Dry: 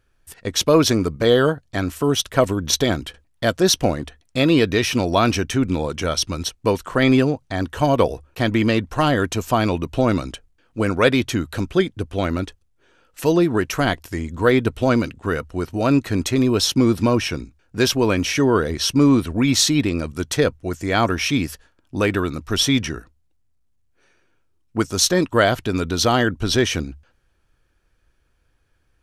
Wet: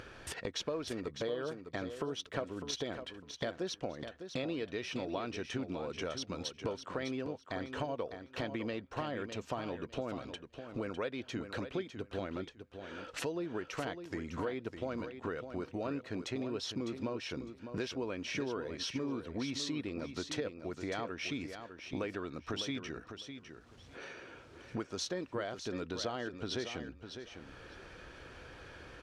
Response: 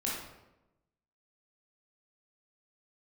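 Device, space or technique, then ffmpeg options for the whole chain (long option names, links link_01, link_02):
upward and downward compression: -af "highpass=frequency=190:poles=1,lowpass=4700,equalizer=frequency=500:width=1.9:gain=4,acompressor=mode=upward:threshold=-23dB:ratio=2.5,acompressor=threshold=-29dB:ratio=6,aecho=1:1:604|1208|1812:0.355|0.0639|0.0115,volume=-7dB"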